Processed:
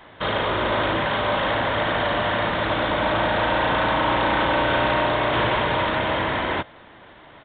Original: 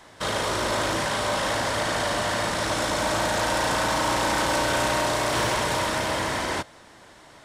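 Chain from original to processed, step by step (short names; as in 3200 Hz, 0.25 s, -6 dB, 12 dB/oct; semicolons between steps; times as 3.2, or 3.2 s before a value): downsampling 8000 Hz; gain +3.5 dB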